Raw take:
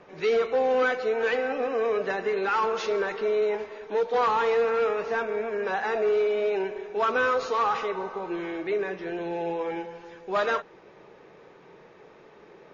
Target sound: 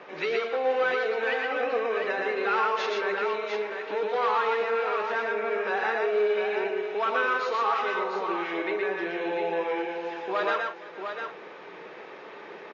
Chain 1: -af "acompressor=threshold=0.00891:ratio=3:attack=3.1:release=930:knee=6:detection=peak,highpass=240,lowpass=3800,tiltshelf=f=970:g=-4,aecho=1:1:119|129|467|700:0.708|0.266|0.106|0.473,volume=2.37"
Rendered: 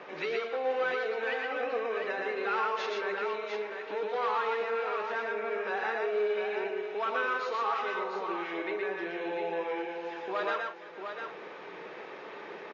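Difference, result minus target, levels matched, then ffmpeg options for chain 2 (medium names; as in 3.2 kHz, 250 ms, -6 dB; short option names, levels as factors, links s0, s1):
compression: peak gain reduction +5 dB
-af "acompressor=threshold=0.0211:ratio=3:attack=3.1:release=930:knee=6:detection=peak,highpass=240,lowpass=3800,tiltshelf=f=970:g=-4,aecho=1:1:119|129|467|700:0.708|0.266|0.106|0.473,volume=2.37"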